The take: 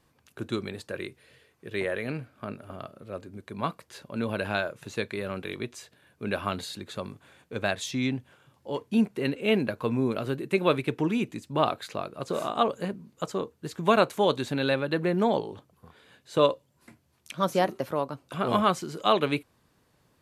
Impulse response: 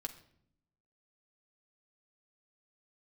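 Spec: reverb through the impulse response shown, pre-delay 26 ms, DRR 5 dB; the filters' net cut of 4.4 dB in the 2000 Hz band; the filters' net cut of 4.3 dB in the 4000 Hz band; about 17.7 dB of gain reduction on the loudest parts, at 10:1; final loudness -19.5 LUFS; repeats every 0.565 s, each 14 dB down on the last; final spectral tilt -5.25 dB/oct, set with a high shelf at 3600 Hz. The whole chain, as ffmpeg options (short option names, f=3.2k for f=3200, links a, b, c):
-filter_complex "[0:a]equalizer=f=2k:t=o:g=-6,highshelf=f=3.6k:g=5.5,equalizer=f=4k:t=o:g=-6.5,acompressor=threshold=-36dB:ratio=10,aecho=1:1:565|1130:0.2|0.0399,asplit=2[a][b];[1:a]atrim=start_sample=2205,adelay=26[c];[b][c]afir=irnorm=-1:irlink=0,volume=-3dB[d];[a][d]amix=inputs=2:normalize=0,volume=21dB"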